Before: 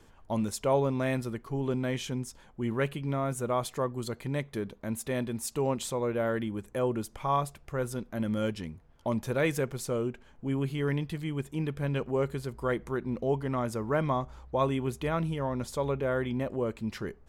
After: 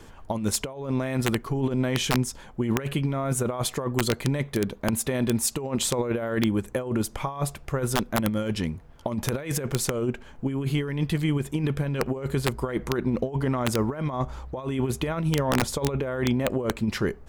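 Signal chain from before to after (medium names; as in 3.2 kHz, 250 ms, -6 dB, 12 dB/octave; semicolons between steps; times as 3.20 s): compressor with a negative ratio -32 dBFS, ratio -0.5; integer overflow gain 21 dB; trim +7.5 dB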